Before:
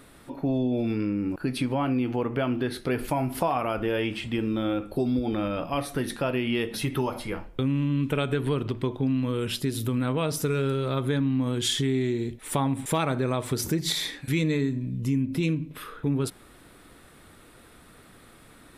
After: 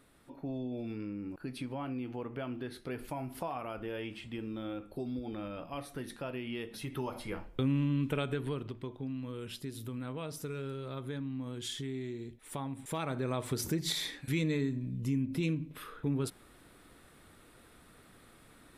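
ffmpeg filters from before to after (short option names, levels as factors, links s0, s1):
-af "volume=1.41,afade=t=in:st=6.83:d=0.89:silence=0.375837,afade=t=out:st=7.72:d=1.07:silence=0.334965,afade=t=in:st=12.8:d=0.62:silence=0.446684"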